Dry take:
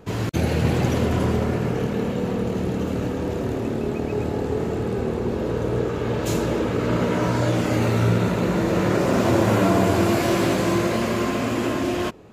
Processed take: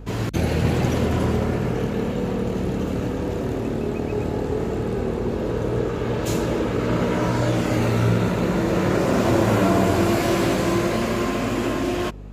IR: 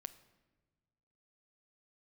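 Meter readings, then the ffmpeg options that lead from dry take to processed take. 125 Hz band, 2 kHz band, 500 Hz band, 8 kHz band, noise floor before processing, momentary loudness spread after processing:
0.0 dB, 0.0 dB, 0.0 dB, 0.0 dB, -27 dBFS, 6 LU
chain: -af "aeval=exprs='val(0)+0.0158*(sin(2*PI*50*n/s)+sin(2*PI*2*50*n/s)/2+sin(2*PI*3*50*n/s)/3+sin(2*PI*4*50*n/s)/4+sin(2*PI*5*50*n/s)/5)':c=same"

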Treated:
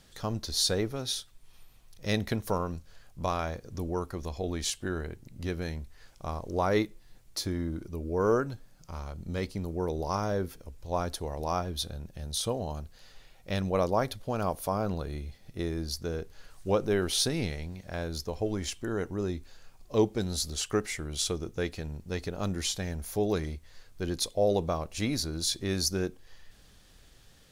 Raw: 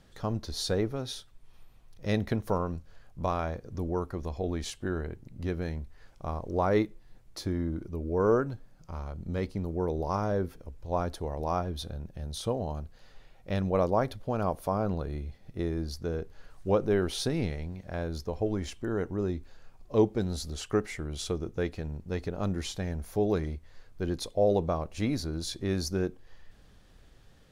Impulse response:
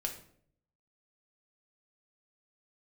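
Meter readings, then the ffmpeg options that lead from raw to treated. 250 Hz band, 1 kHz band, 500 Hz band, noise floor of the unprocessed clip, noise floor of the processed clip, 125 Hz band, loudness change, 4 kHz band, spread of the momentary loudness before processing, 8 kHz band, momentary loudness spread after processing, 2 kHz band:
-1.5 dB, 0.0 dB, -1.0 dB, -57 dBFS, -57 dBFS, -1.5 dB, 0.0 dB, +6.5 dB, 12 LU, +8.5 dB, 12 LU, +2.5 dB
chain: -af "highshelf=f=2600:g=11.5,volume=0.841"

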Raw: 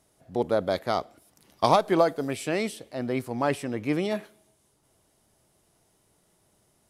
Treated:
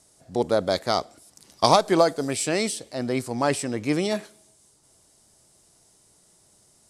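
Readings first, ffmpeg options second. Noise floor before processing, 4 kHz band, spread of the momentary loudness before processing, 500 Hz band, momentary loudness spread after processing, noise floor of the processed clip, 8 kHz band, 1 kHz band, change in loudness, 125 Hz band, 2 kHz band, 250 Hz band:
-68 dBFS, +8.0 dB, 9 LU, +2.5 dB, 9 LU, -60 dBFS, +12.0 dB, +2.5 dB, +3.0 dB, +2.5 dB, +3.0 dB, +2.5 dB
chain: -af "lowpass=f=7700:t=q:w=3,aexciter=amount=1.5:drive=6.3:freq=4100,volume=1.33"

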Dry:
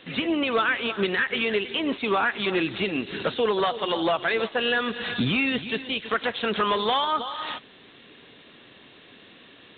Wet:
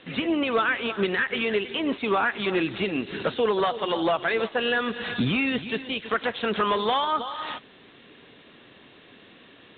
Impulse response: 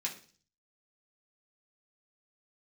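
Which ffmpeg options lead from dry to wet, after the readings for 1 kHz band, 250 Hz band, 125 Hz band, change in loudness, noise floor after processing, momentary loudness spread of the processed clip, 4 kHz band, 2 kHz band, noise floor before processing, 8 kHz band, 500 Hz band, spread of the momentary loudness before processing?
0.0 dB, +0.5 dB, +0.5 dB, -0.5 dB, -52 dBFS, 6 LU, -2.5 dB, -1.0 dB, -51 dBFS, no reading, +0.5 dB, 5 LU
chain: -af "aemphasis=mode=reproduction:type=50fm"

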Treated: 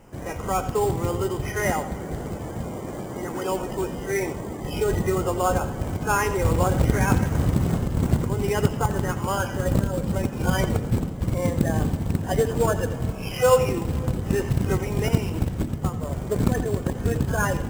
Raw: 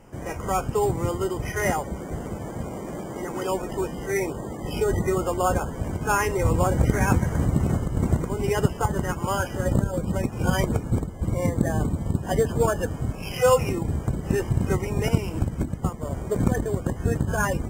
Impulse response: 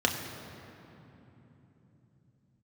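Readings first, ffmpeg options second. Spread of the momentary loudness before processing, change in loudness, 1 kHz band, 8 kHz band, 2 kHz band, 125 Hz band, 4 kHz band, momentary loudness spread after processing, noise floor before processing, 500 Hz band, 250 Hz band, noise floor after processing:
10 LU, +0.5 dB, +0.5 dB, +0.5 dB, +0.5 dB, +1.0 dB, +1.5 dB, 9 LU, -35 dBFS, +0.5 dB, +1.0 dB, -33 dBFS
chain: -filter_complex "[0:a]acrusher=bits=5:mode=log:mix=0:aa=0.000001,asplit=2[s0][s1];[1:a]atrim=start_sample=2205,adelay=86[s2];[s1][s2]afir=irnorm=-1:irlink=0,volume=0.075[s3];[s0][s3]amix=inputs=2:normalize=0"

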